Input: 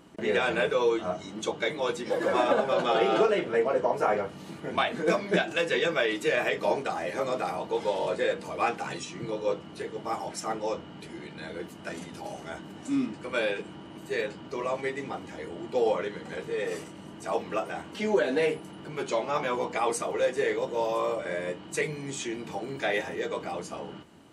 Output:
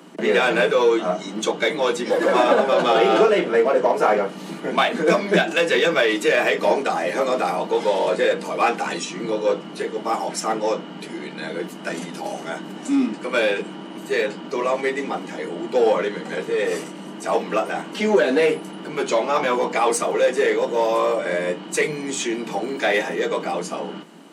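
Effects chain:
in parallel at −5.5 dB: hard clipping −28.5 dBFS, distortion −7 dB
on the sum: Butterworth high-pass 160 Hz 96 dB per octave
level +6 dB

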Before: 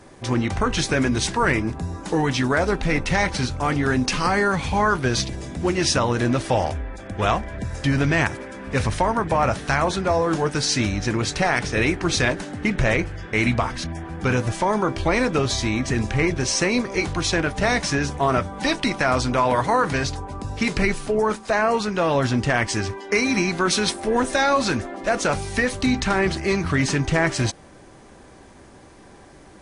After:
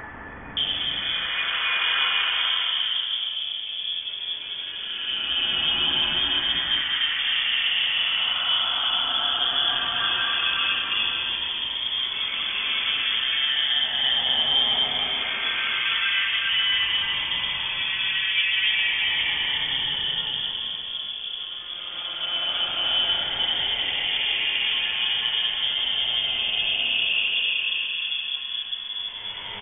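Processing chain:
mains-hum notches 60/120/180/240 Hz
extreme stretch with random phases 4.9×, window 0.50 s, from 0:01.13
multiband delay without the direct sound highs, lows 570 ms, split 1,400 Hz
background noise white −47 dBFS
voice inversion scrambler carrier 3,400 Hz
level −2.5 dB

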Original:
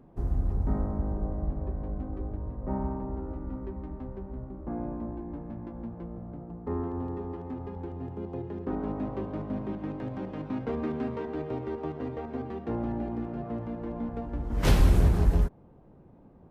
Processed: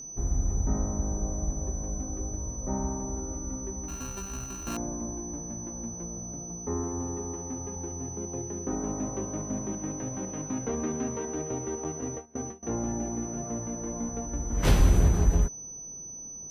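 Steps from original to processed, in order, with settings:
0:03.88–0:04.77: samples sorted by size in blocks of 32 samples
steady tone 6,000 Hz −39 dBFS
0:11.84–0:12.63: noise gate with hold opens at −24 dBFS

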